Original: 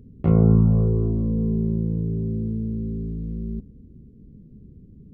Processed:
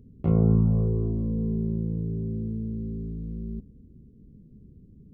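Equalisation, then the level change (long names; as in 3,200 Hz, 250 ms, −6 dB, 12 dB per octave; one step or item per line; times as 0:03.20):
parametric band 1,700 Hz −5.5 dB 0.77 octaves
−4.5 dB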